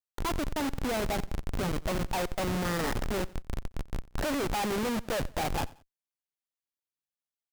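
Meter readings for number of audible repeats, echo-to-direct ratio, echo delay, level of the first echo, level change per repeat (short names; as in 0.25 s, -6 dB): 2, -21.0 dB, 90 ms, -21.5 dB, -9.5 dB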